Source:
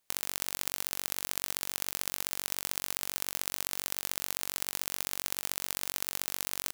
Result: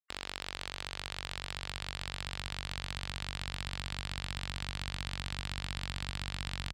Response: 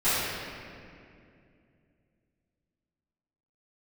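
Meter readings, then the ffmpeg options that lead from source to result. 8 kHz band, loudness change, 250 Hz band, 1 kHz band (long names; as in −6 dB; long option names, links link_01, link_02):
−15.5 dB, −6.5 dB, +2.0 dB, −1.0 dB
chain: -af "highpass=45,asubboost=boost=9.5:cutoff=100,lowpass=frequency=4700:width=0.5412,lowpass=frequency=4700:width=1.3066,afftfilt=real='re*gte(hypot(re,im),0.002)':imag='im*gte(hypot(re,im),0.002)':win_size=1024:overlap=0.75,asoftclip=type=tanh:threshold=-25.5dB,volume=5.5dB"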